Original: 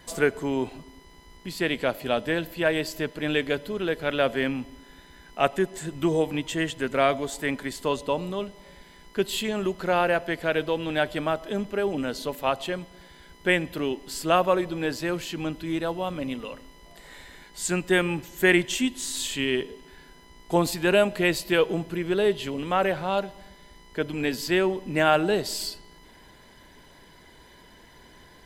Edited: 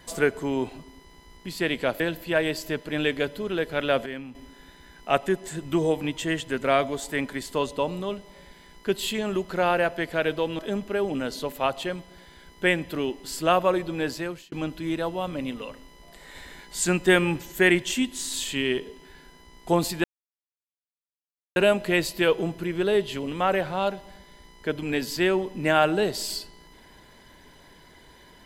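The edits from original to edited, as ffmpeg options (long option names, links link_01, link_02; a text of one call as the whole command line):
ffmpeg -i in.wav -filter_complex "[0:a]asplit=9[link_01][link_02][link_03][link_04][link_05][link_06][link_07][link_08][link_09];[link_01]atrim=end=2.002[link_10];[link_02]atrim=start=2.298:end=4.362[link_11];[link_03]atrim=start=4.358:end=4.652,asetpts=PTS-STARTPTS,volume=-9.5dB[link_12];[link_04]atrim=start=4.648:end=10.892[link_13];[link_05]atrim=start=11.418:end=15.35,asetpts=PTS-STARTPTS,afade=type=out:start_time=3.532:duration=0.4[link_14];[link_06]atrim=start=15.35:end=17.182,asetpts=PTS-STARTPTS,afade=type=in:duration=0.004:curve=hsin[link_15];[link_07]atrim=start=17.178:end=18.352,asetpts=PTS-STARTPTS,volume=3dB[link_16];[link_08]atrim=start=18.348:end=20.87,asetpts=PTS-STARTPTS,afade=type=out:start_time=2.518:duration=0.004:curve=hsin,apad=pad_dur=1.52[link_17];[link_09]atrim=start=20.87,asetpts=PTS-STARTPTS,afade=type=in:duration=0.004:curve=hsin[link_18];[link_10][link_11]acrossfade=duration=0.004:curve1=hsin:curve2=hsin[link_19];[link_19][link_12]acrossfade=duration=0.004:curve1=hsin:curve2=hsin[link_20];[link_20][link_13]acrossfade=duration=0.004:curve1=hsin:curve2=hsin[link_21];[link_14][link_15]concat=n=2:v=0:a=1[link_22];[link_21][link_22]acrossfade=duration=0.004:curve1=hsin:curve2=hsin[link_23];[link_23][link_16]acrossfade=duration=0.004:curve1=hsin:curve2=hsin[link_24];[link_17][link_18]concat=n=2:v=0:a=1[link_25];[link_24][link_25]acrossfade=duration=0.004:curve1=hsin:curve2=hsin" out.wav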